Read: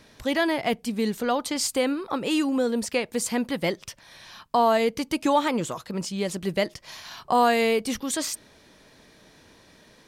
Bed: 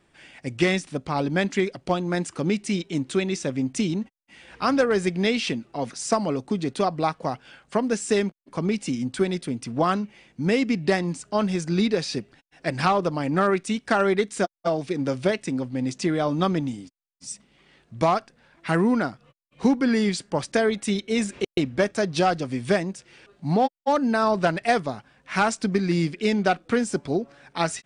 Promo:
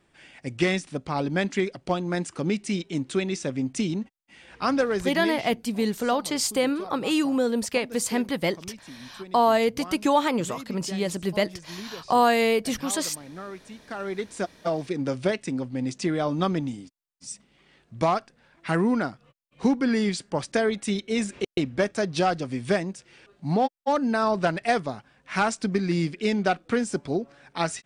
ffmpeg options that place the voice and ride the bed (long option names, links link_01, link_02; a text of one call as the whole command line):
ffmpeg -i stem1.wav -i stem2.wav -filter_complex "[0:a]adelay=4800,volume=0.5dB[link_01];[1:a]volume=13.5dB,afade=type=out:start_time=4.73:duration=0.75:silence=0.16788,afade=type=in:start_time=13.85:duration=0.91:silence=0.16788[link_02];[link_01][link_02]amix=inputs=2:normalize=0" out.wav